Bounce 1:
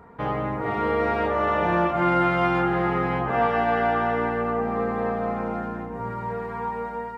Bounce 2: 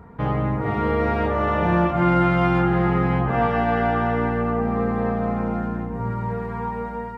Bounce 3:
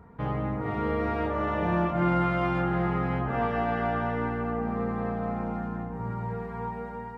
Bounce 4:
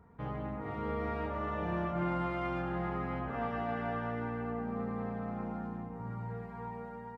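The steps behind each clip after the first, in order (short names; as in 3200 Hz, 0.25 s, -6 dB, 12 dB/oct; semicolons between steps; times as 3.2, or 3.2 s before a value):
tone controls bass +10 dB, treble 0 dB
analogue delay 0.196 s, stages 2048, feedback 72%, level -13 dB; gain -7 dB
echo 0.111 s -8.5 dB; gain -8.5 dB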